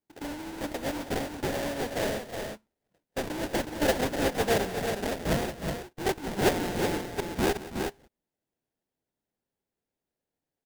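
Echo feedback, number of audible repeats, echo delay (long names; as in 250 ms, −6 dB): repeats not evenly spaced, 3, 178 ms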